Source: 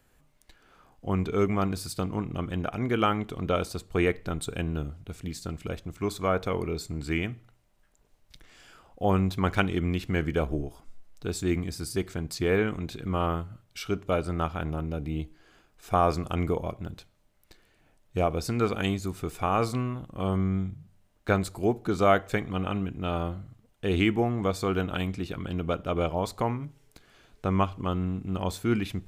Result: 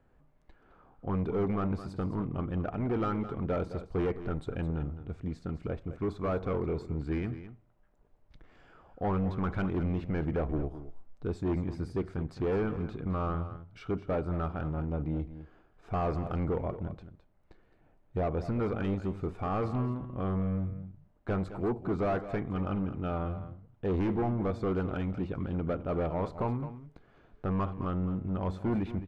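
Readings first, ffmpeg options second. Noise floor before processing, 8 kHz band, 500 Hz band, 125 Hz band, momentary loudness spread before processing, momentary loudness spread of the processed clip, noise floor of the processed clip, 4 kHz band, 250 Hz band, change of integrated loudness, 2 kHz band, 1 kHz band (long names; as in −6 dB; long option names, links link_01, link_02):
−65 dBFS, below −20 dB, −4.5 dB, −2.5 dB, 11 LU, 8 LU, −65 dBFS, −16.5 dB, −3.0 dB, −4.0 dB, −11.0 dB, −7.0 dB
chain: -filter_complex "[0:a]volume=26dB,asoftclip=hard,volume=-26dB,lowpass=1100,crystalizer=i=2.5:c=0,asplit=2[link_01][link_02];[link_02]aecho=0:1:213:0.237[link_03];[link_01][link_03]amix=inputs=2:normalize=0"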